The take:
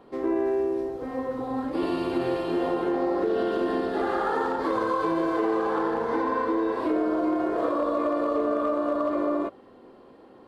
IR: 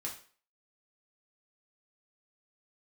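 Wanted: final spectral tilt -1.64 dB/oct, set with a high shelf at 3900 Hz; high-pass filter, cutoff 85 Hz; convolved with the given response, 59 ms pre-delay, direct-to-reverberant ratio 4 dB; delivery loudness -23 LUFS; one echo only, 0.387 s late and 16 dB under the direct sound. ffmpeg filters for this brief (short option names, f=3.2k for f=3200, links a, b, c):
-filter_complex "[0:a]highpass=85,highshelf=f=3.9k:g=-4,aecho=1:1:387:0.158,asplit=2[a][b];[1:a]atrim=start_sample=2205,adelay=59[c];[b][c]afir=irnorm=-1:irlink=0,volume=-4dB[d];[a][d]amix=inputs=2:normalize=0,volume=2.5dB"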